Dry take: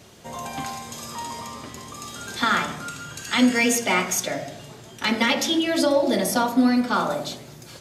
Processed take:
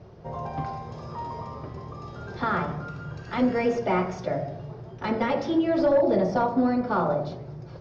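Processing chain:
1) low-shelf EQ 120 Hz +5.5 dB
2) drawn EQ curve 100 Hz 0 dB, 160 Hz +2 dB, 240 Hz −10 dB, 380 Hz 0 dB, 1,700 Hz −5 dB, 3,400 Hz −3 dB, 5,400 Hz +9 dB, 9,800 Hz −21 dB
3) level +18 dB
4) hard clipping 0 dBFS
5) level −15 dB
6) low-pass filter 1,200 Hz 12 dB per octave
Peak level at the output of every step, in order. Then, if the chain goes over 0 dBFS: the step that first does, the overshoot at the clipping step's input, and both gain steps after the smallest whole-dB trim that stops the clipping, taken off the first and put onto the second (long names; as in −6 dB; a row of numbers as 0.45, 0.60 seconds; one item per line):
−6.5, −8.0, +10.0, 0.0, −15.0, −14.5 dBFS
step 3, 10.0 dB
step 3 +8 dB, step 5 −5 dB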